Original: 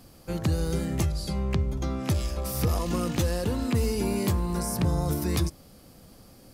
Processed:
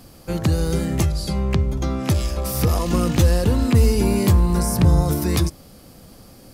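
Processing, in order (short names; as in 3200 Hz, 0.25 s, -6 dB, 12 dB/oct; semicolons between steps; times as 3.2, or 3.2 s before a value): 2.93–5.03 low shelf 110 Hz +8 dB; gain +6.5 dB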